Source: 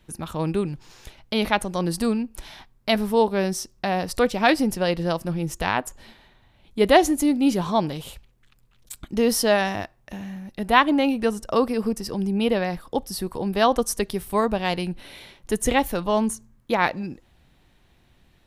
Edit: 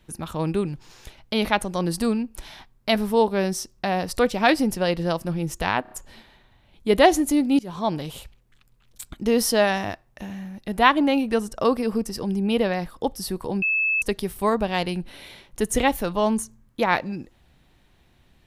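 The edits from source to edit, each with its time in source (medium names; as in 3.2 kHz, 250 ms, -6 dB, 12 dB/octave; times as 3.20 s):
5.82 s: stutter 0.03 s, 4 plays
7.50–8.07 s: fade in equal-power, from -22.5 dB
13.53–13.93 s: bleep 2.61 kHz -19 dBFS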